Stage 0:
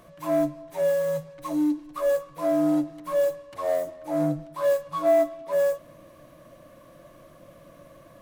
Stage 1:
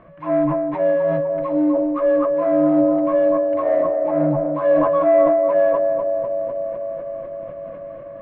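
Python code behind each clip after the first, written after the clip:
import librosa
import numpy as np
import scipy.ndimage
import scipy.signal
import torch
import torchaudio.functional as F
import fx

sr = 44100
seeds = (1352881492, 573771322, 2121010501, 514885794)

y = scipy.signal.sosfilt(scipy.signal.butter(4, 2300.0, 'lowpass', fs=sr, output='sos'), x)
y = fx.echo_banded(y, sr, ms=249, feedback_pct=81, hz=520.0, wet_db=-4.0)
y = fx.sustainer(y, sr, db_per_s=23.0)
y = y * librosa.db_to_amplitude(4.5)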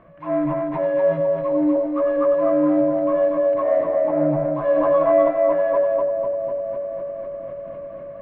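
y = fx.echo_multitap(x, sr, ms=(93, 244), db=(-8.0, -3.5))
y = y * librosa.db_to_amplitude(-3.0)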